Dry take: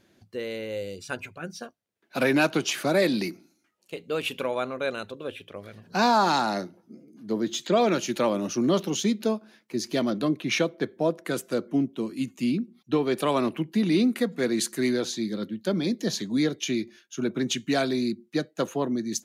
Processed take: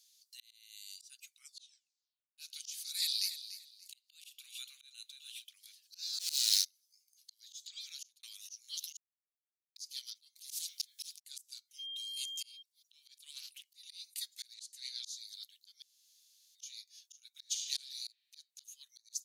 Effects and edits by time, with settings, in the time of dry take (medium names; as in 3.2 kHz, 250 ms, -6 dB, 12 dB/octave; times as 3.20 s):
1.27 s: tape stop 1.11 s
2.92–5.44 s: feedback delay 290 ms, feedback 24%, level -13 dB
6.19–6.65 s: waveshaping leveller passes 5
7.50–8.23 s: fade out
8.97–9.76 s: mute
10.36–11.20 s: spectrum-flattening compressor 10:1
11.78–12.61 s: whistle 3.2 kHz -37 dBFS
13.30–13.71 s: loudspeaker Doppler distortion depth 0.21 ms
14.54–15.05 s: band-pass filter 2.5 kHz, Q 0.78
15.82–16.55 s: room tone
17.34–17.76 s: reverb throw, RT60 1.5 s, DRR 3 dB
whole clip: inverse Chebyshev high-pass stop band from 740 Hz, stop band 80 dB; slow attack 476 ms; trim +8 dB